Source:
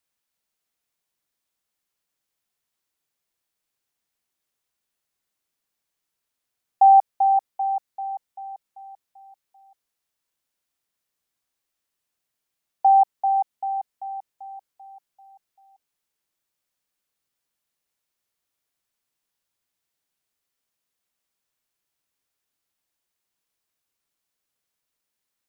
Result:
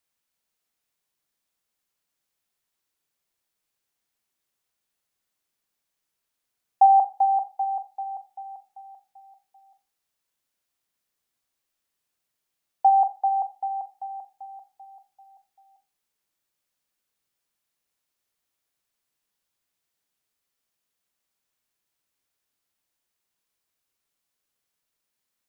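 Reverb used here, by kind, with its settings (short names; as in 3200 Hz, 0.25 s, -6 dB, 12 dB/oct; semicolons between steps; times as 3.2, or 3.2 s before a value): Schroeder reverb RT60 0.32 s, combs from 30 ms, DRR 11 dB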